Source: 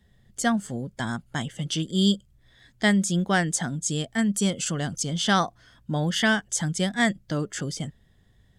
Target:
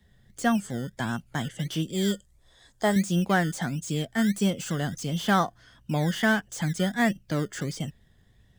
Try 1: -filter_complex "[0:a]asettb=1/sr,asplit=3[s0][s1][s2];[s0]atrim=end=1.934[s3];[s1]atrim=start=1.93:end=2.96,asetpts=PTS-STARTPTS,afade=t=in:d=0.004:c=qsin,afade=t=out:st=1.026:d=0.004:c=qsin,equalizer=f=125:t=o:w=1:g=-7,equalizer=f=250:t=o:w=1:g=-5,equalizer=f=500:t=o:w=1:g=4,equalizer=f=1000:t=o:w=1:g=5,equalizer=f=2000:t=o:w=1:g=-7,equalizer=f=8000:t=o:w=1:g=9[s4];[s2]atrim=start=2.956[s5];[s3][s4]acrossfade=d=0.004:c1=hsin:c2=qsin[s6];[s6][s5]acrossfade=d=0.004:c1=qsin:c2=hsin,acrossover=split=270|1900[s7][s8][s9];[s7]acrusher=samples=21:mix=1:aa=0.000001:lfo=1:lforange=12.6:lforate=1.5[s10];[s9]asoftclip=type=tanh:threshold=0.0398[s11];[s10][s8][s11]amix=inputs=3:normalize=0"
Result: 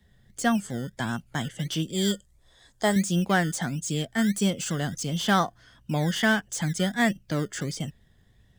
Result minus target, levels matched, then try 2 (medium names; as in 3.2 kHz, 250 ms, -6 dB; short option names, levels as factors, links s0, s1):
saturation: distortion -5 dB
-filter_complex "[0:a]asettb=1/sr,asplit=3[s0][s1][s2];[s0]atrim=end=1.934[s3];[s1]atrim=start=1.93:end=2.96,asetpts=PTS-STARTPTS,afade=t=in:d=0.004:c=qsin,afade=t=out:st=1.026:d=0.004:c=qsin,equalizer=f=125:t=o:w=1:g=-7,equalizer=f=250:t=o:w=1:g=-5,equalizer=f=500:t=o:w=1:g=4,equalizer=f=1000:t=o:w=1:g=5,equalizer=f=2000:t=o:w=1:g=-7,equalizer=f=8000:t=o:w=1:g=9[s4];[s2]atrim=start=2.956[s5];[s3][s4]acrossfade=d=0.004:c1=hsin:c2=qsin[s6];[s6][s5]acrossfade=d=0.004:c1=qsin:c2=hsin,acrossover=split=270|1900[s7][s8][s9];[s7]acrusher=samples=21:mix=1:aa=0.000001:lfo=1:lforange=12.6:lforate=1.5[s10];[s9]asoftclip=type=tanh:threshold=0.0168[s11];[s10][s8][s11]amix=inputs=3:normalize=0"